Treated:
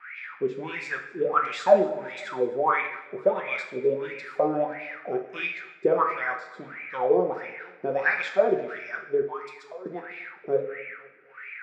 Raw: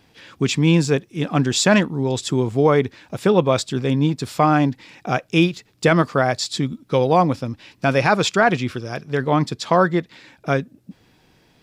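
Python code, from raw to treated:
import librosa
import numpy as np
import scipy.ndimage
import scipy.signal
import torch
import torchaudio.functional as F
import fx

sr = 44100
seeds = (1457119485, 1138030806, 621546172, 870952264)

p1 = fx.dmg_noise_band(x, sr, seeds[0], low_hz=1300.0, high_hz=2500.0, level_db=-42.0)
p2 = fx.wah_lfo(p1, sr, hz=1.5, low_hz=390.0, high_hz=2400.0, q=13.0)
p3 = fx.differentiator(p2, sr, at=(9.22, 9.86))
p4 = p3 + fx.echo_feedback(p3, sr, ms=252, feedback_pct=45, wet_db=-22.5, dry=0)
p5 = fx.rev_double_slope(p4, sr, seeds[1], early_s=0.57, late_s=1.5, knee_db=-18, drr_db=2.0)
y = p5 * 10.0 ** (8.0 / 20.0)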